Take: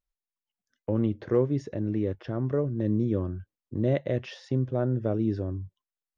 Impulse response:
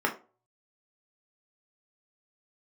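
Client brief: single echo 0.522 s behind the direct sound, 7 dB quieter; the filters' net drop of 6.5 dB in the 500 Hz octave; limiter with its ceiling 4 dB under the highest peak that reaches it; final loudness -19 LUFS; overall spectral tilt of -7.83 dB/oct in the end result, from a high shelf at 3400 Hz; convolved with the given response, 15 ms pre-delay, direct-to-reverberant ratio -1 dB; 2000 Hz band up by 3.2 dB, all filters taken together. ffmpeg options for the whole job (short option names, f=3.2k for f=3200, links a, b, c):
-filter_complex "[0:a]equalizer=f=500:t=o:g=-8.5,equalizer=f=2k:t=o:g=6.5,highshelf=f=3.4k:g=-7.5,alimiter=limit=-20.5dB:level=0:latency=1,aecho=1:1:522:0.447,asplit=2[a][b];[1:a]atrim=start_sample=2205,adelay=15[c];[b][c]afir=irnorm=-1:irlink=0,volume=-10.5dB[d];[a][d]amix=inputs=2:normalize=0,volume=10dB"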